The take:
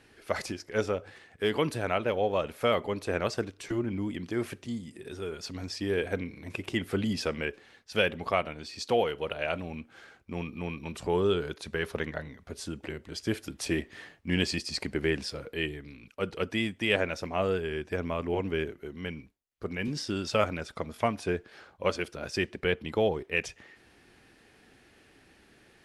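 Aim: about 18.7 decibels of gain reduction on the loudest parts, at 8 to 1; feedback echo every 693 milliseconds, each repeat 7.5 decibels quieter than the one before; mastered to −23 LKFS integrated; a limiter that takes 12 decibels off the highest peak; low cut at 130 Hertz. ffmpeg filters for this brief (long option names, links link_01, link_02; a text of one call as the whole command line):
ffmpeg -i in.wav -af "highpass=130,acompressor=threshold=-41dB:ratio=8,alimiter=level_in=11.5dB:limit=-24dB:level=0:latency=1,volume=-11.5dB,aecho=1:1:693|1386|2079|2772|3465:0.422|0.177|0.0744|0.0312|0.0131,volume=24.5dB" out.wav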